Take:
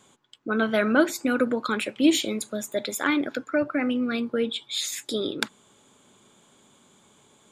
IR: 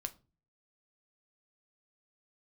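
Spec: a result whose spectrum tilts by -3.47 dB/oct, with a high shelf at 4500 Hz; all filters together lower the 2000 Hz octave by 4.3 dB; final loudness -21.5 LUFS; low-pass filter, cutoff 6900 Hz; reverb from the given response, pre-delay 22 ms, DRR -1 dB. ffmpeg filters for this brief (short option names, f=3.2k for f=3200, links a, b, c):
-filter_complex "[0:a]lowpass=6.9k,equalizer=f=2k:t=o:g=-7,highshelf=f=4.5k:g=3.5,asplit=2[a][b];[1:a]atrim=start_sample=2205,adelay=22[c];[b][c]afir=irnorm=-1:irlink=0,volume=2.5dB[d];[a][d]amix=inputs=2:normalize=0,volume=1.5dB"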